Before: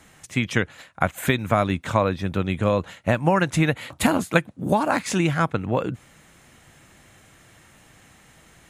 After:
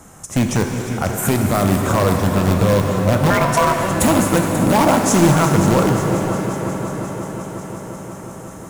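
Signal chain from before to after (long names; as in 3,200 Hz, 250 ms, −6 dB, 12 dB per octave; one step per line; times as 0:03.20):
flat-topped bell 2,800 Hz −13 dB
brickwall limiter −15.5 dBFS, peak gain reduction 11 dB
on a send: echo machine with several playback heads 179 ms, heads second and third, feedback 72%, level −13 dB
0:03.30–0:03.79: on the sum: ring modulation 830 Hz
in parallel at −7 dB: wrap-around overflow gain 18.5 dB
on the sum: reverb with rising layers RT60 3 s, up +7 semitones, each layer −8 dB, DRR 4 dB
level +7.5 dB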